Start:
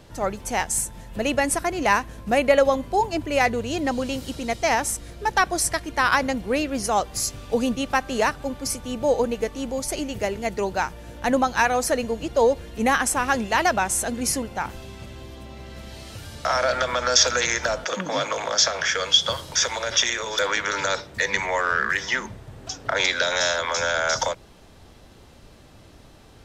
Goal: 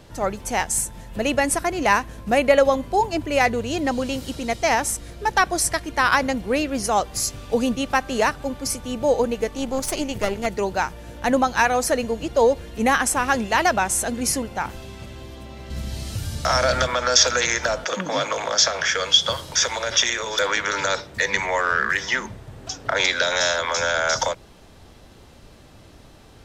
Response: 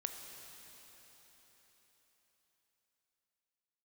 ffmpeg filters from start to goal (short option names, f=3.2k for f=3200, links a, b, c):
-filter_complex "[0:a]asettb=1/sr,asplit=3[a][b][c];[a]atrim=end=9.504[d];[b]atrim=start=9.5:end=10.46,asetpts=PTS-STARTPTS,afade=t=in:d=0.004:c=qsin,afade=t=out:st=0.956:d=0.004:c=qsin,aeval=exprs='0.251*(cos(1*acos(clip(val(0)/0.251,-1,1)))-cos(1*PI/2))+0.0501*(cos(4*acos(clip(val(0)/0.251,-1,1)))-cos(4*PI/2))':c=same[e];[c]atrim=start=10.456[f];[d][e]acrossfade=d=0.004:c1=hsin:c2=qsin[g];[g][f]acrossfade=d=0.004:c1=qsin:c2=hsin,asettb=1/sr,asplit=3[h][i][j];[h]atrim=end=15.704[k];[i]atrim=start=15.7:end=16.87,asetpts=PTS-STARTPTS,afade=t=in:d=0.004:c=qsin,afade=t=out:st=1.166:d=0.004:c=qsin,bass=f=250:g=10,treble=f=4k:g=7[l];[j]atrim=start=16.866[m];[k][l]acrossfade=d=0.004:c1=hsin:c2=qsin[n];[n][m]acrossfade=d=0.004:c1=qsin:c2=hsin,volume=1.5dB"